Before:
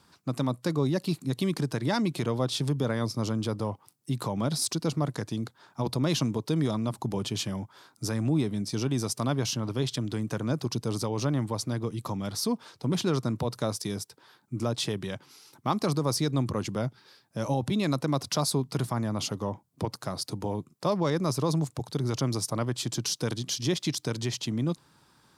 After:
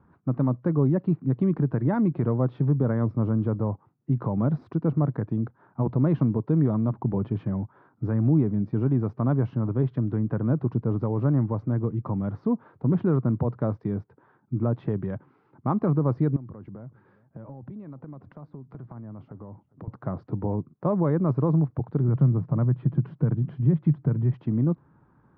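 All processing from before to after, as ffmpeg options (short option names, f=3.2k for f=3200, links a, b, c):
-filter_complex "[0:a]asettb=1/sr,asplit=3[a][b][c];[a]atrim=end=16.364[d];[b]atrim=start=16.36:end=19.88,asetpts=PTS-STARTPTS,afade=t=in:d=0.004:c=qsin,afade=t=out:st=3.516:d=0.004:c=qsin,highpass=46,acompressor=threshold=-41dB:ratio=12:attack=3.2:release=140:knee=1:detection=peak,aecho=1:1:404:0.075,atrim=end_sample=155232[e];[c]atrim=start=19.876[f];[d][e]acrossfade=d=0.004:c1=hsin:c2=qsin[g];[g][f]acrossfade=d=0.004:c1=qsin:c2=hsin,asettb=1/sr,asplit=3[h][i][j];[h]atrim=end=22.084[k];[i]atrim=start=22.08:end=24.34,asetpts=PTS-STARTPTS,afade=t=in:d=0.004:c=qsin,afade=t=out:st=2.256:d=0.004:c=qsin,lowpass=2.8k,equalizer=f=150:t=o:w=0.73:g=14,acompressor=threshold=-32dB:ratio=1.5:attack=3.2:release=140:knee=1:detection=peak[l];[j]atrim=start=24.336[m];[k][l]acrossfade=d=0.004:c1=hsin:c2=qsin[n];[n][m]acrossfade=d=0.004:c1=qsin:c2=hsin,lowpass=f=1.6k:w=0.5412,lowpass=f=1.6k:w=1.3066,lowshelf=f=400:g=10,volume=-2.5dB"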